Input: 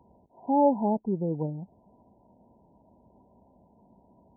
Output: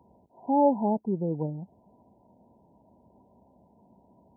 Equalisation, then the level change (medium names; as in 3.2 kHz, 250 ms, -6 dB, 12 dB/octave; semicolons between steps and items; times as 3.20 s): high-pass 60 Hz; 0.0 dB